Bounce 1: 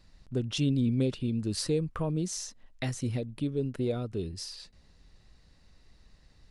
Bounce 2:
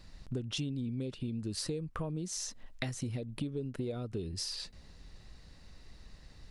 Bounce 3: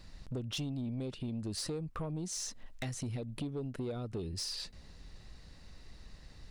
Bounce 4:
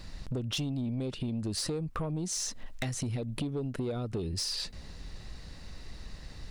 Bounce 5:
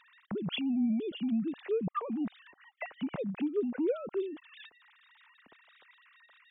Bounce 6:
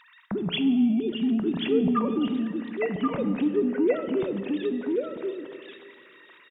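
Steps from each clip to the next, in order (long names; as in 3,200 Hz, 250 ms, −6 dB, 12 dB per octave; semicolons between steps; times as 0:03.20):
downward compressor 10 to 1, threshold −39 dBFS, peak gain reduction 16.5 dB; level +5.5 dB
soft clipping −32 dBFS, distortion −15 dB; level +1 dB
downward compressor 2 to 1, threshold −41 dBFS, peak gain reduction 4 dB; level +8 dB
three sine waves on the formant tracks
floating-point word with a short mantissa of 8 bits; single-tap delay 1,084 ms −4 dB; on a send at −8.5 dB: convolution reverb RT60 2.1 s, pre-delay 3 ms; on the sum: level +6.5 dB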